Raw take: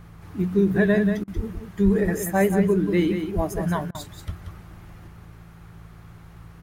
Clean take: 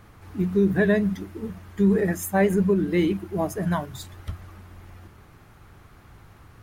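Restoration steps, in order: de-hum 55.7 Hz, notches 3; 1.35–1.47 HPF 140 Hz 24 dB/oct; 1.84–1.96 HPF 140 Hz 24 dB/oct; 3.35–3.47 HPF 140 Hz 24 dB/oct; interpolate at 1.24/3.91, 36 ms; inverse comb 0.184 s -7.5 dB

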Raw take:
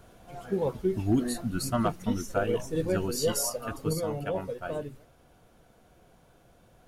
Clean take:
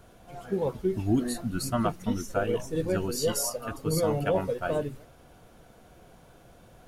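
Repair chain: clip repair -16 dBFS; gain 0 dB, from 3.93 s +5.5 dB

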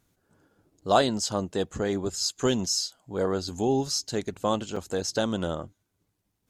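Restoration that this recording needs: interpolate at 0.81/4.76, 4.6 ms

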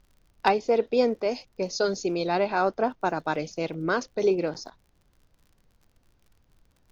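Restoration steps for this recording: clip repair -8.5 dBFS; de-click; expander -57 dBFS, range -21 dB

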